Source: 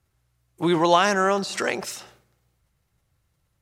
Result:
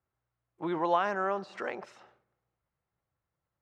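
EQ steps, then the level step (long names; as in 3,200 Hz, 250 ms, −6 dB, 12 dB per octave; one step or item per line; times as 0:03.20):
low-pass filter 1,100 Hz 12 dB per octave
spectral tilt +3.5 dB per octave
−6.0 dB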